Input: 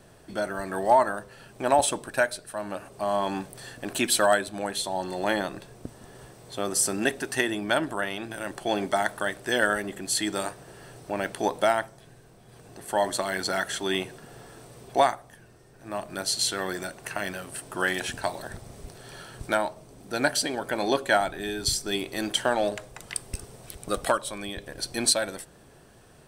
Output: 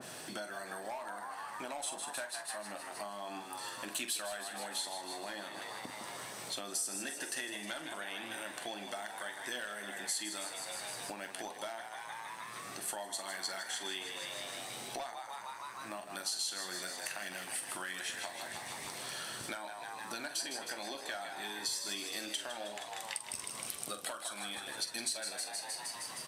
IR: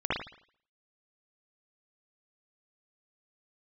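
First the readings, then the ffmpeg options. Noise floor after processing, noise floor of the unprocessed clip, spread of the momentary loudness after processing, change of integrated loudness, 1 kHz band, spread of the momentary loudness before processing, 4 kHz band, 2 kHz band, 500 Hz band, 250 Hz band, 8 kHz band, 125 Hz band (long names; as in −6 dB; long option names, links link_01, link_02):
−47 dBFS, −53 dBFS, 8 LU, −12.5 dB, −14.5 dB, 18 LU, −7.5 dB, −11.5 dB, −18.0 dB, −17.0 dB, −7.5 dB, −18.5 dB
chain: -filter_complex "[0:a]asplit=2[link_01][link_02];[link_02]alimiter=limit=-18dB:level=0:latency=1,volume=1dB[link_03];[link_01][link_03]amix=inputs=2:normalize=0,highpass=230,asplit=2[link_04][link_05];[link_05]asplit=8[link_06][link_07][link_08][link_09][link_10][link_11][link_12][link_13];[link_06]adelay=156,afreqshift=76,volume=-9dB[link_14];[link_07]adelay=312,afreqshift=152,volume=-12.9dB[link_15];[link_08]adelay=468,afreqshift=228,volume=-16.8dB[link_16];[link_09]adelay=624,afreqshift=304,volume=-20.6dB[link_17];[link_10]adelay=780,afreqshift=380,volume=-24.5dB[link_18];[link_11]adelay=936,afreqshift=456,volume=-28.4dB[link_19];[link_12]adelay=1092,afreqshift=532,volume=-32.3dB[link_20];[link_13]adelay=1248,afreqshift=608,volume=-36.1dB[link_21];[link_14][link_15][link_16][link_17][link_18][link_19][link_20][link_21]amix=inputs=8:normalize=0[link_22];[link_04][link_22]amix=inputs=2:normalize=0,asoftclip=type=hard:threshold=-10.5dB,asplit=2[link_23][link_24];[link_24]adelay=44,volume=-10dB[link_25];[link_23][link_25]amix=inputs=2:normalize=0,acompressor=mode=upward:threshold=-33dB:ratio=2.5,equalizer=frequency=420:width_type=o:width=0.59:gain=-6.5,acompressor=threshold=-35dB:ratio=6,acrusher=bits=8:mode=log:mix=0:aa=0.000001,aresample=32000,aresample=44100,flanger=delay=8:depth=3.4:regen=-61:speed=0.21:shape=sinusoidal,adynamicequalizer=threshold=0.00126:dfrequency=2000:dqfactor=0.7:tfrequency=2000:tqfactor=0.7:attack=5:release=100:ratio=0.375:range=3.5:mode=boostabove:tftype=highshelf,volume=-2.5dB"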